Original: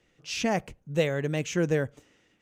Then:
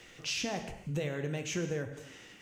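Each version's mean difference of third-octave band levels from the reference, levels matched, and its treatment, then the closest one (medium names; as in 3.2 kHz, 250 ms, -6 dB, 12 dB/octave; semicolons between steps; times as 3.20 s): 7.0 dB: in parallel at +1 dB: peak limiter -23 dBFS, peak gain reduction 10 dB; on the sum: compression 5:1, threshold -36 dBFS, peak gain reduction 18 dB; gated-style reverb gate 310 ms falling, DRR 5.5 dB; tape noise reduction on one side only encoder only; trim +1.5 dB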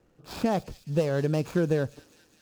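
5.0 dB: median filter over 15 samples; peaking EQ 2 kHz -11 dB 0.32 oct; compression 4:1, threshold -26 dBFS, peak gain reduction 6.5 dB; on a send: feedback echo behind a high-pass 206 ms, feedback 69%, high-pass 3.8 kHz, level -10 dB; on the sum: trim +5 dB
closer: second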